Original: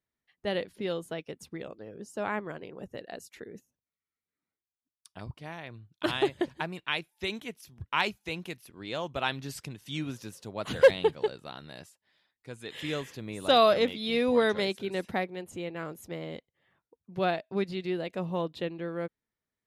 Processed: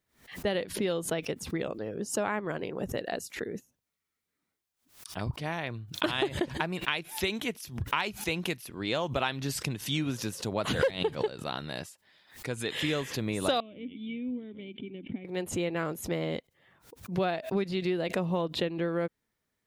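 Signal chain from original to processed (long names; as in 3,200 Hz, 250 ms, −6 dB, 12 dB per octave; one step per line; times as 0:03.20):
downward compressor 6 to 1, threshold −34 dBFS, peak gain reduction 18.5 dB
0:13.60–0:15.25: formant resonators in series i
background raised ahead of every attack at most 140 dB per second
level +8 dB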